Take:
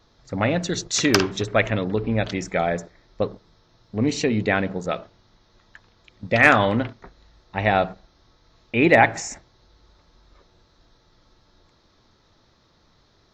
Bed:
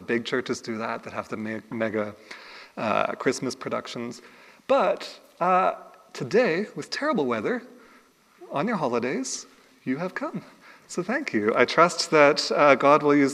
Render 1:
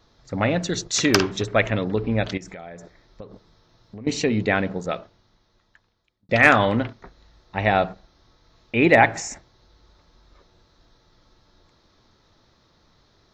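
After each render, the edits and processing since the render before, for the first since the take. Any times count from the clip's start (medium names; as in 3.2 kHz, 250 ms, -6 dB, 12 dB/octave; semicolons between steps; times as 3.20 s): 2.37–4.07 s: compression 8:1, threshold -35 dBFS; 4.72–6.29 s: fade out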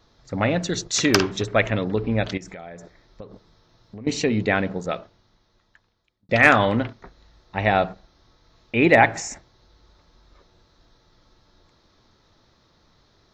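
no audible change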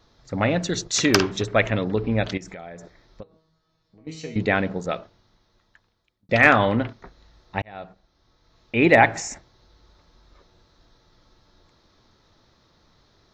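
3.23–4.36 s: feedback comb 160 Hz, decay 0.47 s, mix 90%; 6.44–6.88 s: distance through air 88 m; 7.62–8.85 s: fade in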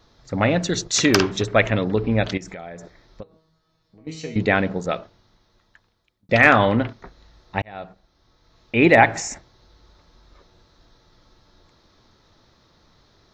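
trim +2.5 dB; peak limiter -2 dBFS, peak gain reduction 3 dB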